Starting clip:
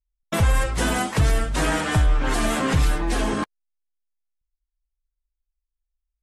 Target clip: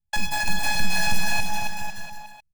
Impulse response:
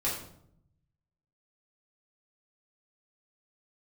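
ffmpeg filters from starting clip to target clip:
-af "afftfilt=real='hypot(re,im)*cos(PI*b)':imag='0':win_size=512:overlap=0.75,aecho=1:1:660|1221|1698|2103|2448:0.631|0.398|0.251|0.158|0.1,asetrate=108045,aresample=44100,volume=1.19"

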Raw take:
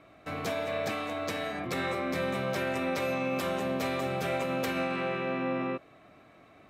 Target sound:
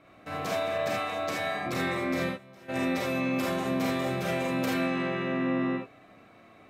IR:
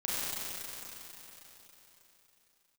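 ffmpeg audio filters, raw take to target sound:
-filter_complex "[0:a]asplit=3[s0][s1][s2];[s0]afade=t=out:st=2.28:d=0.02[s3];[s1]agate=range=0.0224:threshold=0.141:ratio=3:detection=peak,afade=t=in:st=2.28:d=0.02,afade=t=out:st=2.68:d=0.02[s4];[s2]afade=t=in:st=2.68:d=0.02[s5];[s3][s4][s5]amix=inputs=3:normalize=0[s6];[1:a]atrim=start_sample=2205,atrim=end_sample=3969[s7];[s6][s7]afir=irnorm=-1:irlink=0"

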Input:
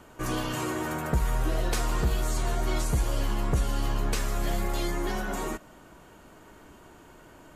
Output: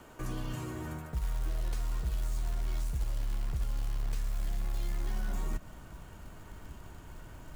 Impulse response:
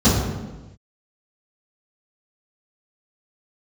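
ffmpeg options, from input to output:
-filter_complex "[0:a]asubboost=boost=5:cutoff=140,areverse,acompressor=threshold=0.0447:ratio=16,areverse,acrusher=bits=5:mode=log:mix=0:aa=0.000001,acrossover=split=260[s0][s1];[s1]acompressor=threshold=0.00794:ratio=6[s2];[s0][s2]amix=inputs=2:normalize=0,volume=0.841"

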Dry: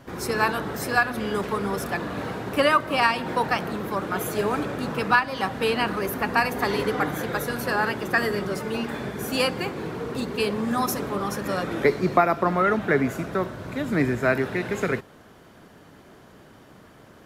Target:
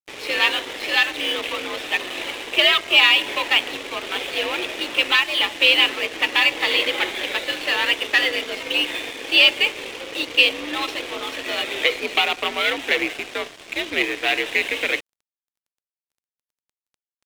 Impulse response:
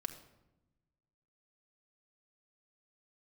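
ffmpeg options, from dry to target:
-af "asoftclip=type=tanh:threshold=0.112,highpass=f=230:t=q:w=0.5412,highpass=f=230:t=q:w=1.307,lowpass=f=3300:t=q:w=0.5176,lowpass=f=3300:t=q:w=0.7071,lowpass=f=3300:t=q:w=1.932,afreqshift=66,aexciter=amount=8.4:drive=7.9:freq=2200,aeval=exprs='sgn(val(0))*max(abs(val(0))-0.0188,0)':c=same,volume=1.19"

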